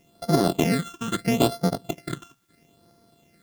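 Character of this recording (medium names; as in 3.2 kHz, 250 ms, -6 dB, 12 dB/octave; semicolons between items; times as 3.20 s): a buzz of ramps at a fixed pitch in blocks of 64 samples; phasing stages 8, 0.76 Hz, lowest notch 600–2600 Hz; a quantiser's noise floor 12-bit, dither triangular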